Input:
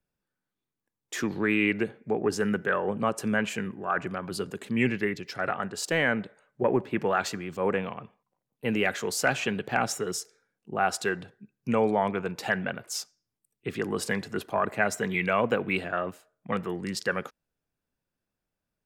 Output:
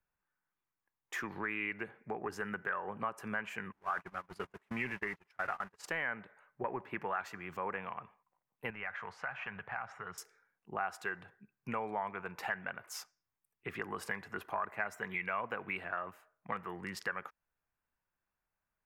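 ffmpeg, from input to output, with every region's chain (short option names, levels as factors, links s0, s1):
-filter_complex "[0:a]asettb=1/sr,asplit=3[s0][s1][s2];[s0]atrim=end=3.724[s3];[s1]atrim=start=3.72:end=5.86,asetpts=PTS-STARTPTS,afade=t=in:d=0.004:c=qsin,afade=t=out:st=2.136:d=0.004:c=qsin,aeval=exprs='val(0)+0.5*0.0224*sgn(val(0))':c=same,lowpass=9800,agate=range=0.0141:threshold=0.0316:ratio=16:release=100:detection=peak[s4];[s2]atrim=start=5.856[s5];[s3][s4]acrossfade=d=0.004:c1=hsin:c2=qsin[s6];[s6][s5]acrossfade=d=0.004:c1=qsin:c2=hsin,asettb=1/sr,asplit=3[s7][s8][s9];[s7]atrim=end=8.704[s10];[s8]atrim=start=8.7:end=10.18,asetpts=PTS-STARTPTS,afade=t=in:d=0.004:c=qsin,afade=t=out:st=1.476:d=0.004:c=qsin,lowpass=2000,equalizer=f=330:t=o:w=1.4:g=-14.5,acompressor=threshold=0.0178:ratio=2:attack=3.2:release=140:knee=1:detection=peak[s11];[s9]atrim=start=10.176[s12];[s10][s11]acrossfade=d=0.004:c1=hsin:c2=qsin[s13];[s13][s12]acrossfade=d=0.004:c1=qsin:c2=hsin,equalizer=f=125:t=o:w=1:g=-5,equalizer=f=250:t=o:w=1:g=-7,equalizer=f=500:t=o:w=1:g=-5,equalizer=f=1000:t=o:w=1:g=7,equalizer=f=2000:t=o:w=1:g=5,equalizer=f=4000:t=o:w=1:g=-8,equalizer=f=8000:t=o:w=1:g=-8,acompressor=threshold=0.0178:ratio=2.5,volume=0.708"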